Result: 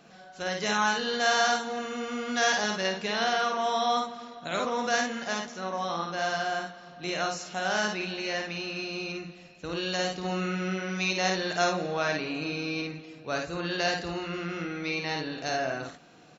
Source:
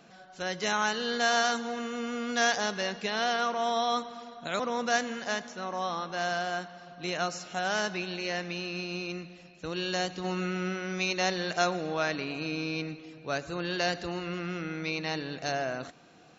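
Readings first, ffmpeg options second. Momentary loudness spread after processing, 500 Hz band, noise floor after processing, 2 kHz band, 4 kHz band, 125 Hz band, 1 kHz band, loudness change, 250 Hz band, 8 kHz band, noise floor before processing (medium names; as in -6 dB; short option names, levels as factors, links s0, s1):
9 LU, +1.5 dB, -50 dBFS, +2.0 dB, +2.0 dB, +1.0 dB, +2.0 dB, +1.5 dB, +1.0 dB, no reading, -53 dBFS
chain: -af "aecho=1:1:53|71:0.668|0.299"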